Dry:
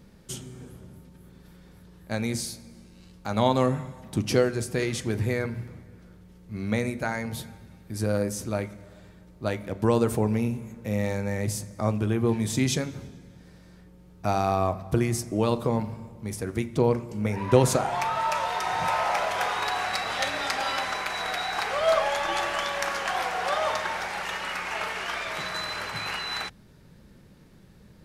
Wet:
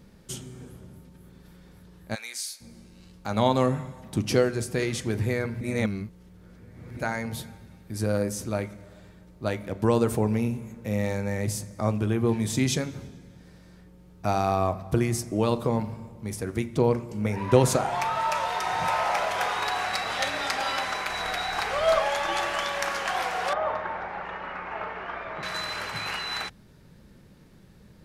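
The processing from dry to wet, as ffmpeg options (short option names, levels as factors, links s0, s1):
-filter_complex "[0:a]asplit=3[s0][s1][s2];[s0]afade=t=out:st=2.14:d=0.02[s3];[s1]highpass=1500,afade=t=in:st=2.14:d=0.02,afade=t=out:st=2.6:d=0.02[s4];[s2]afade=t=in:st=2.6:d=0.02[s5];[s3][s4][s5]amix=inputs=3:normalize=0,asettb=1/sr,asplit=3[s6][s7][s8];[s6]atrim=end=21.094[s9];[s7]atrim=start=21.09:end=21.99,asetpts=PTS-STARTPTS,afade=t=in:d=0.004:c=qsin,afade=t=out:st=0.896:d=0.004:c=qsin,lowshelf=f=85:g=10[s10];[s8]atrim=start=21.986[s11];[s9][s10]acrossfade=d=0.004:c1=hsin:c2=qsin[s12];[s12][s11]acrossfade=d=0.004:c1=qsin:c2=hsin,asettb=1/sr,asplit=3[s13][s14][s15];[s13]atrim=end=23.534[s16];[s14]atrim=start=23.53:end=25.43,asetpts=PTS-STARTPTS,afade=t=in:d=0.004:c=qsin,afade=t=out:st=1.896:d=0.004:c=qsin,lowpass=1400[s17];[s15]atrim=start=25.426[s18];[s16][s17]acrossfade=d=0.004:c1=hsin:c2=qsin[s19];[s19][s18]acrossfade=d=0.004:c1=qsin:c2=hsin,asplit=3[s20][s21][s22];[s20]atrim=end=5.612[s23];[s21]atrim=start=5.608:end=6.972,asetpts=PTS-STARTPTS,areverse[s24];[s22]atrim=start=6.968[s25];[s23][s24]acrossfade=d=0.004:c1=hsin:c2=hsin[s26];[s26][s25]acrossfade=d=0.004:c1=hsin:c2=hsin"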